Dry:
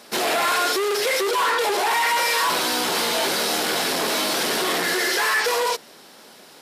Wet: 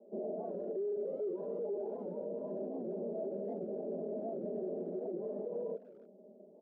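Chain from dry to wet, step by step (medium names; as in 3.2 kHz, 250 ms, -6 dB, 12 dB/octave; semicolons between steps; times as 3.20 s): CVSD coder 16 kbps; Chebyshev band-pass 180–630 Hz, order 4; hum notches 60/120/180/240/300/360/420 Hz; comb 5 ms, depth 70%; peak limiter -25 dBFS, peak gain reduction 9.5 dB; speakerphone echo 300 ms, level -21 dB; warped record 78 rpm, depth 160 cents; trim -6.5 dB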